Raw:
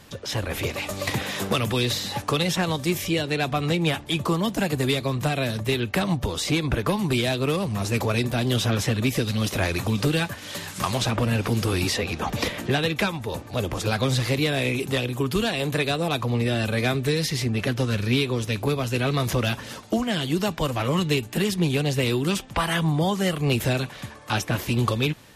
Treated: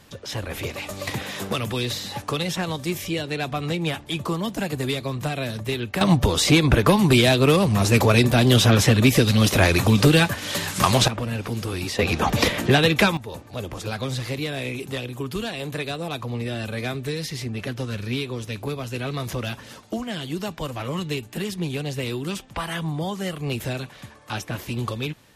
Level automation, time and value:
−2.5 dB
from 0:06.01 +7 dB
from 0:11.08 −4.5 dB
from 0:11.99 +6 dB
from 0:13.17 −5 dB

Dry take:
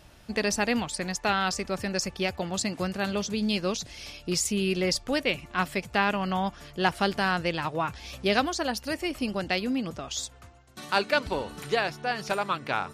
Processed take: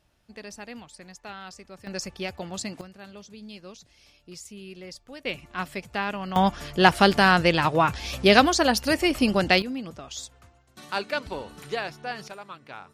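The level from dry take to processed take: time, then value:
−14.5 dB
from 0:01.87 −4 dB
from 0:02.81 −15.5 dB
from 0:05.25 −4 dB
from 0:06.36 +8 dB
from 0:09.62 −4 dB
from 0:12.28 −13 dB

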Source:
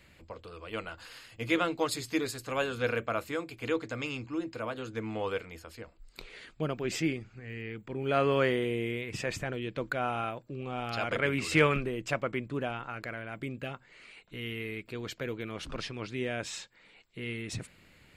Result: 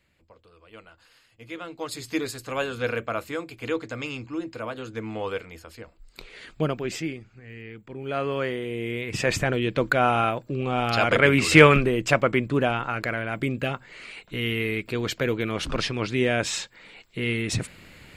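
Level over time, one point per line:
0:01.58 −9.5 dB
0:02.10 +3 dB
0:06.34 +3 dB
0:06.57 +9 dB
0:07.07 −1 dB
0:08.63 −1 dB
0:09.32 +11 dB

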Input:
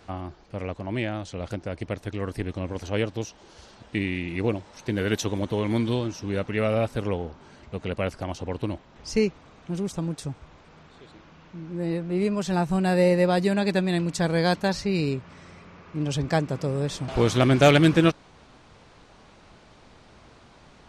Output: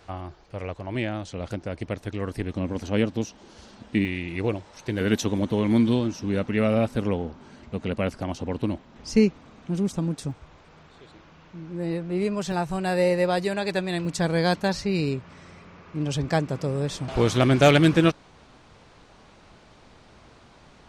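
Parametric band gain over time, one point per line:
parametric band 230 Hz 0.71 octaves
−7 dB
from 0:00.95 +1.5 dB
from 0:02.54 +9 dB
from 0:04.05 −3 dB
from 0:05.01 +7 dB
from 0:10.31 −2.5 dB
from 0:12.52 −10.5 dB
from 0:14.05 0 dB

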